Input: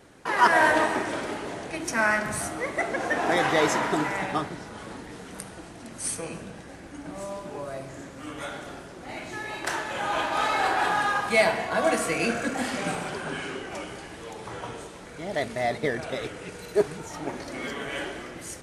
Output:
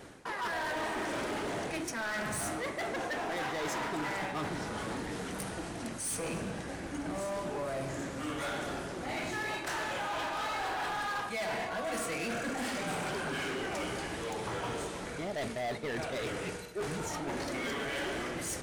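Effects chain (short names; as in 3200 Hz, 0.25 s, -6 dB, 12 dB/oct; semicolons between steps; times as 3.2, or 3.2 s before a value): reverse; compressor 6:1, threshold -33 dBFS, peak gain reduction 18 dB; reverse; hard clip -35.5 dBFS, distortion -10 dB; gain +3.5 dB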